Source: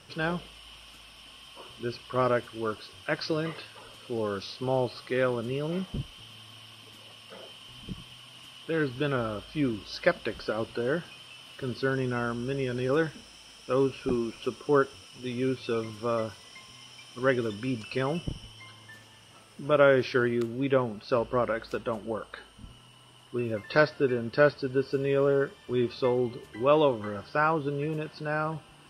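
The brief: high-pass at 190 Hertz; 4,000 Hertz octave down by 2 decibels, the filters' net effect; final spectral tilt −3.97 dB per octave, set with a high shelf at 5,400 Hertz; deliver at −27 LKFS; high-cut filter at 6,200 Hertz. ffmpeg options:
ffmpeg -i in.wav -af "highpass=190,lowpass=6200,equalizer=frequency=4000:width_type=o:gain=-5,highshelf=frequency=5400:gain=7,volume=2.5dB" out.wav

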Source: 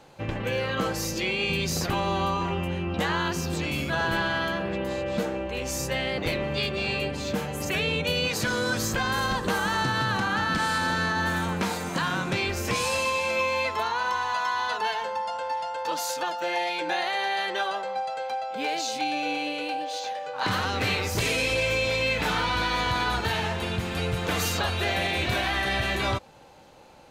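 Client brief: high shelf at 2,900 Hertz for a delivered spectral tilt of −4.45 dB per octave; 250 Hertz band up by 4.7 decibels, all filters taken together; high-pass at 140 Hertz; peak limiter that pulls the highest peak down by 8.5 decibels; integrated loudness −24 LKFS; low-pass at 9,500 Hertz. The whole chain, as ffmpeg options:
ffmpeg -i in.wav -af "highpass=140,lowpass=9500,equalizer=frequency=250:width_type=o:gain=7.5,highshelf=frequency=2900:gain=-3,volume=4.5dB,alimiter=limit=-15dB:level=0:latency=1" out.wav

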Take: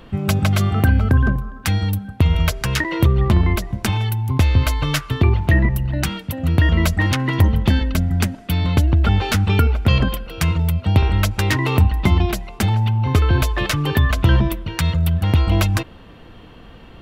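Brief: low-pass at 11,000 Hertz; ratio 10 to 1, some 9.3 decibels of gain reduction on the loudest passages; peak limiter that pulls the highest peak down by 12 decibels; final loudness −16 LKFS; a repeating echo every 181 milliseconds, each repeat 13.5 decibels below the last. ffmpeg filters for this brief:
ffmpeg -i in.wav -af "lowpass=11000,acompressor=threshold=-19dB:ratio=10,alimiter=limit=-17dB:level=0:latency=1,aecho=1:1:181|362:0.211|0.0444,volume=10dB" out.wav

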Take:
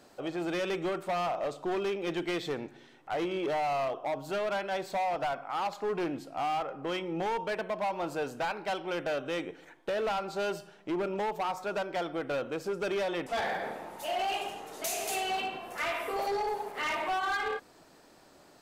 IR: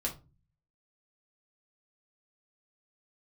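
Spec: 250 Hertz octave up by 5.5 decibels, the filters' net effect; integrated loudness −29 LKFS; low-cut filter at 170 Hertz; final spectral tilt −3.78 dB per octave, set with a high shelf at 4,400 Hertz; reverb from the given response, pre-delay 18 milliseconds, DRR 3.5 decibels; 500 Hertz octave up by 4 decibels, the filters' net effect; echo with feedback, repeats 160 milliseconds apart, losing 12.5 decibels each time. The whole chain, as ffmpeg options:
-filter_complex "[0:a]highpass=170,equalizer=frequency=250:width_type=o:gain=8,equalizer=frequency=500:width_type=o:gain=3,highshelf=frequency=4400:gain=-6,aecho=1:1:160|320|480:0.237|0.0569|0.0137,asplit=2[link_01][link_02];[1:a]atrim=start_sample=2205,adelay=18[link_03];[link_02][link_03]afir=irnorm=-1:irlink=0,volume=-6.5dB[link_04];[link_01][link_04]amix=inputs=2:normalize=0,volume=-0.5dB"

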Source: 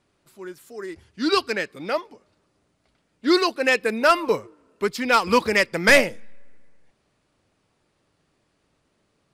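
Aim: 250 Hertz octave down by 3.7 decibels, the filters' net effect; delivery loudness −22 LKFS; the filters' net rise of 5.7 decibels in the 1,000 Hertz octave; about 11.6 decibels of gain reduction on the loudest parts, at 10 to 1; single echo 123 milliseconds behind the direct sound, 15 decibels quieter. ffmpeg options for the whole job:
ffmpeg -i in.wav -af "equalizer=frequency=250:width_type=o:gain=-6,equalizer=frequency=1000:width_type=o:gain=7.5,acompressor=threshold=-20dB:ratio=10,aecho=1:1:123:0.178,volume=4.5dB" out.wav

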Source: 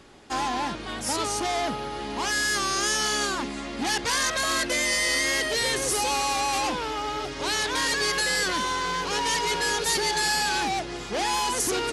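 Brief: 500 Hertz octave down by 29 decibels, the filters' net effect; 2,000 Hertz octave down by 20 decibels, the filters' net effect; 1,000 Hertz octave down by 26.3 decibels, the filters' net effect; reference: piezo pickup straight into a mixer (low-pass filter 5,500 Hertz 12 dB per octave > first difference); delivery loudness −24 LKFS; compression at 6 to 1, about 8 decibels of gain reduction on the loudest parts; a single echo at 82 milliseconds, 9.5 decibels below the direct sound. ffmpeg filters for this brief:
ffmpeg -i in.wav -af "equalizer=frequency=500:width_type=o:gain=-5,equalizer=frequency=1000:width_type=o:gain=-7.5,equalizer=frequency=2000:width_type=o:gain=-8,acompressor=threshold=-32dB:ratio=6,lowpass=5500,aderivative,aecho=1:1:82:0.335,volume=17dB" out.wav

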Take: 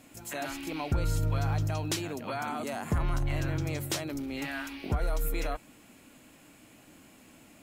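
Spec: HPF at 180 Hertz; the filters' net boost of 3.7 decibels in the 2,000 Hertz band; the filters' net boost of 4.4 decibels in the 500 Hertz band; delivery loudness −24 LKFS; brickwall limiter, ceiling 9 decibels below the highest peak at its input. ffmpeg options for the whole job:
ffmpeg -i in.wav -af "highpass=180,equalizer=frequency=500:width_type=o:gain=5.5,equalizer=frequency=2000:width_type=o:gain=4.5,volume=10.5dB,alimiter=limit=-13.5dB:level=0:latency=1" out.wav

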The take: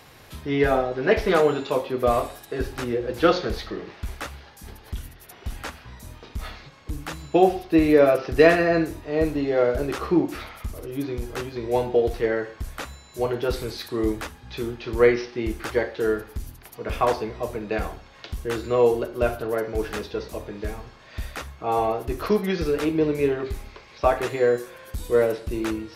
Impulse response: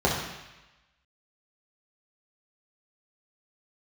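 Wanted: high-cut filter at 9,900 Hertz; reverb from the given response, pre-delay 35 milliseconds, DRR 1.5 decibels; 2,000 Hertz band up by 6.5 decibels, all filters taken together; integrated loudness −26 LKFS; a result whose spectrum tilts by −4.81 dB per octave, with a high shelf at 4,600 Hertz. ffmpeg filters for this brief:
-filter_complex "[0:a]lowpass=9900,equalizer=frequency=2000:width_type=o:gain=7,highshelf=frequency=4600:gain=5.5,asplit=2[link_01][link_02];[1:a]atrim=start_sample=2205,adelay=35[link_03];[link_02][link_03]afir=irnorm=-1:irlink=0,volume=-17.5dB[link_04];[link_01][link_04]amix=inputs=2:normalize=0,volume=-7dB"

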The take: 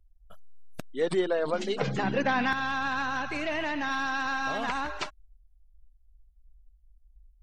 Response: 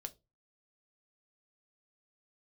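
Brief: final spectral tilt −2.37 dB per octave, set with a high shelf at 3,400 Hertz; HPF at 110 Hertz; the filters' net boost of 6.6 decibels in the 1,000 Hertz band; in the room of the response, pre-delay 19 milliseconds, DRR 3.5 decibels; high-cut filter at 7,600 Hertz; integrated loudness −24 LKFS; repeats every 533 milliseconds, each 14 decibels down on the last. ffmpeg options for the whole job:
-filter_complex "[0:a]highpass=110,lowpass=7600,equalizer=frequency=1000:width_type=o:gain=8.5,highshelf=frequency=3400:gain=-3.5,aecho=1:1:533|1066:0.2|0.0399,asplit=2[link_01][link_02];[1:a]atrim=start_sample=2205,adelay=19[link_03];[link_02][link_03]afir=irnorm=-1:irlink=0,volume=0.5dB[link_04];[link_01][link_04]amix=inputs=2:normalize=0,volume=0.5dB"

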